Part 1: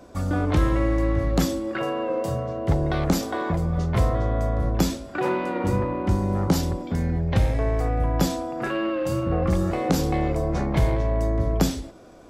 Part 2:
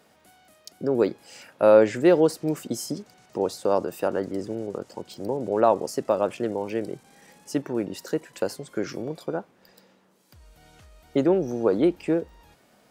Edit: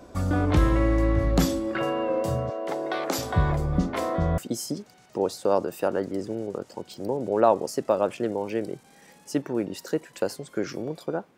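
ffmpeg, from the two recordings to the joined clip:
-filter_complex "[0:a]asettb=1/sr,asplit=3[a][b][c];[a]atrim=end=2.504[d];[b]atrim=start=2.5:end=4.38,asetpts=PTS-STARTPTS,afade=t=in:d=0.004:c=qsin,afade=t=out:st=1.876:d=0.004:c=qsin,acrossover=split=310[e][f];[e]adelay=680[g];[g][f]amix=inputs=2:normalize=0,atrim=end_sample=82908[h];[c]atrim=start=4.376[i];[d][h]acrossfade=d=0.004:c1=hsin:c2=qsin[j];[j][i]acrossfade=d=0.004:c1=qsin:c2=hsin,apad=whole_dur=11.37,atrim=end=11.37,atrim=end=4.382[k];[1:a]atrim=start=2.578:end=9.57[l];[k][l]acrossfade=d=0.004:c1=hsin:c2=hsin"

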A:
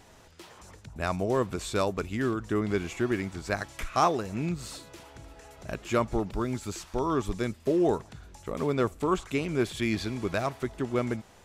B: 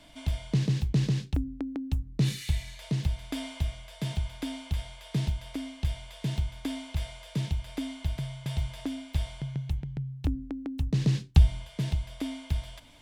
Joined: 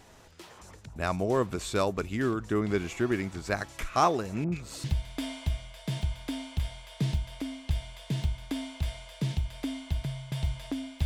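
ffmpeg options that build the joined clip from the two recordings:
-filter_complex "[0:a]asettb=1/sr,asplit=3[a][b][c];[a]atrim=end=4.444[d];[b]atrim=start=4.44:end=4.84,asetpts=PTS-STARTPTS,afade=t=in:d=0.004:c=qsin,afade=t=out:st=0.396:d=0.004:c=qsin,acrossover=split=1200[e][f];[f]adelay=80[g];[e][g]amix=inputs=2:normalize=0,atrim=end_sample=17640[h];[c]atrim=start=4.836[i];[d][h]acrossfade=d=0.004:c1=hsin:c2=qsin[j];[j][i]acrossfade=d=0.004:c1=qsin:c2=hsin,apad=whole_dur=11.05,atrim=end=11.05,atrim=end=4.842[k];[1:a]atrim=start=2.978:end=9.19[l];[k][l]acrossfade=d=0.004:c1=hsin:c2=hsin"

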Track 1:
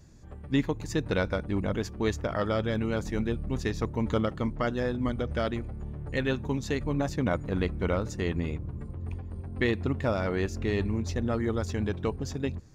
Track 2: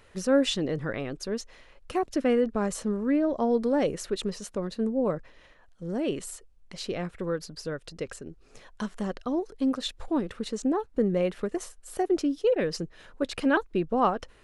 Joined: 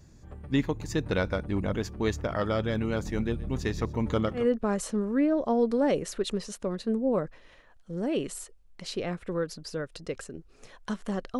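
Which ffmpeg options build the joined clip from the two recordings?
-filter_complex "[0:a]asplit=3[a][b][c];[a]afade=t=out:st=3.36:d=0.02[d];[b]aecho=1:1:125:0.133,afade=t=in:st=3.36:d=0.02,afade=t=out:st=4.47:d=0.02[e];[c]afade=t=in:st=4.47:d=0.02[f];[d][e][f]amix=inputs=3:normalize=0,apad=whole_dur=11.39,atrim=end=11.39,atrim=end=4.47,asetpts=PTS-STARTPTS[g];[1:a]atrim=start=2.25:end=9.31,asetpts=PTS-STARTPTS[h];[g][h]acrossfade=d=0.14:c1=tri:c2=tri"

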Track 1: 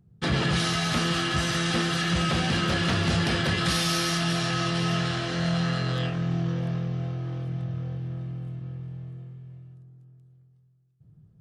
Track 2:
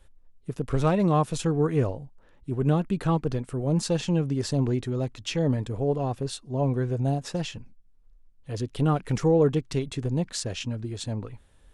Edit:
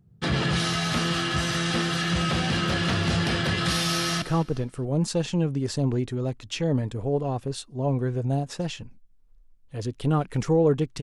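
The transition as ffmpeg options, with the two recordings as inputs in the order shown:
-filter_complex "[0:a]apad=whole_dur=11.02,atrim=end=11.02,atrim=end=4.222[a];[1:a]atrim=start=2.968:end=9.77[b];[a][b]acrossfade=d=0.004:c1=hsin:c2=hsin,asplit=2[c][d];[d]afade=t=in:st=3.86:d=0.01,afade=t=out:st=4.22:d=0.01,aecho=0:1:210|420|630:0.158489|0.0475468|0.014264[e];[c][e]amix=inputs=2:normalize=0"

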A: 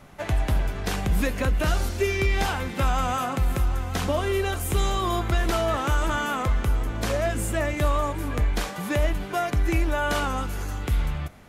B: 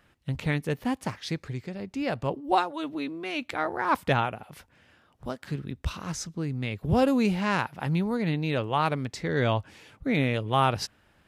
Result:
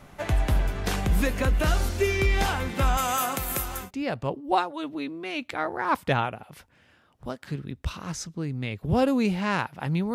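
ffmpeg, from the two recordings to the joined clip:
-filter_complex "[0:a]asettb=1/sr,asplit=3[a][b][c];[a]atrim=end=2.974[d];[b]atrim=start=2.97:end=3.91,asetpts=PTS-STARTPTS,afade=t=in:d=0.004:c=qsin,afade=t=out:st=0.936:d=0.004:c=qsin,aemphasis=mode=production:type=bsi[e];[c]atrim=start=3.906[f];[d][e]acrossfade=d=0.004:c1=hsin:c2=qsin[g];[g][f]acrossfade=d=0.004:c1=qsin:c2=hsin,apad=whole_dur=10.14,atrim=end=10.14,atrim=end=3.91,asetpts=PTS-STARTPTS[h];[1:a]atrim=start=1.79:end=8.14,asetpts=PTS-STARTPTS[i];[h][i]acrossfade=d=0.12:c1=tri:c2=tri"

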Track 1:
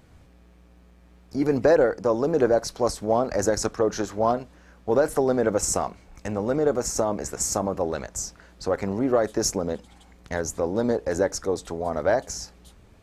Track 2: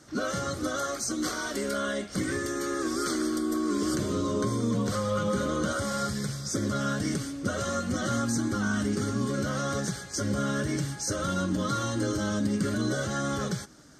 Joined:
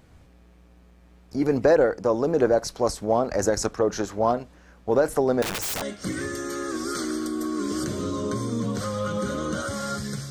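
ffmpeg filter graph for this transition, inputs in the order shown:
-filter_complex "[0:a]asettb=1/sr,asplit=3[a][b][c];[a]atrim=end=5.424[d];[b]atrim=start=5.42:end=5.82,asetpts=PTS-STARTPTS,afade=t=in:d=0.004:c=qsin,afade=t=out:st=0.396:d=0.004:c=qsin,aeval=exprs='(mod(15*val(0)+1,2)-1)/15':c=same[e];[c]atrim=start=5.816[f];[d][e]acrossfade=d=0.004:c1=hsin:c2=qsin[g];[g][f]acrossfade=d=0.004:c1=qsin:c2=hsin,apad=whole_dur=10.3,atrim=end=10.3,atrim=end=5.822[h];[1:a]atrim=start=1.928:end=6.41[i];[h][i]acrossfade=d=0.004:c1=hsin:c2=hsin"

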